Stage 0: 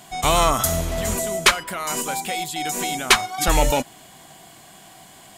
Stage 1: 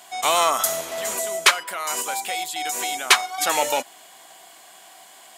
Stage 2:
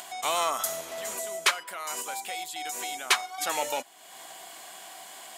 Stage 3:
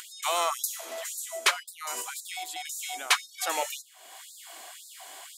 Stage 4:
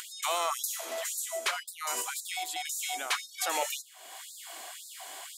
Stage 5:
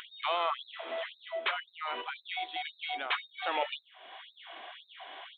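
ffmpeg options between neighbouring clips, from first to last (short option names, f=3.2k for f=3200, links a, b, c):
-af "highpass=530"
-af "acompressor=mode=upward:threshold=-26dB:ratio=2.5,volume=-8dB"
-af "afftfilt=real='re*gte(b*sr/1024,210*pow(3700/210,0.5+0.5*sin(2*PI*1.9*pts/sr)))':imag='im*gte(b*sr/1024,210*pow(3700/210,0.5+0.5*sin(2*PI*1.9*pts/sr)))':win_size=1024:overlap=0.75"
-af "alimiter=limit=-20.5dB:level=0:latency=1:release=55,volume=1.5dB"
-af "aresample=8000,aresample=44100"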